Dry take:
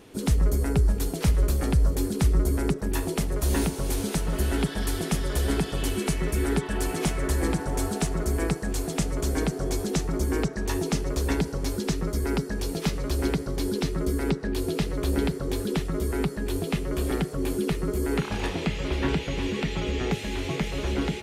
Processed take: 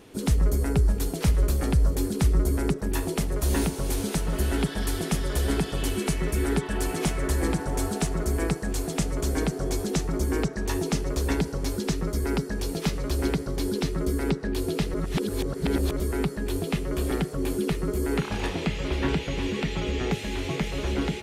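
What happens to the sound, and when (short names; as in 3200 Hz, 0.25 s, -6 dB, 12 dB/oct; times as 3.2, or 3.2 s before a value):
14.94–16 reverse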